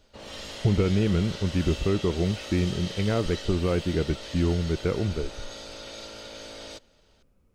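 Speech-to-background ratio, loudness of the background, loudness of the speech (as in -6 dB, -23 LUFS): 12.0 dB, -38.5 LUFS, -26.5 LUFS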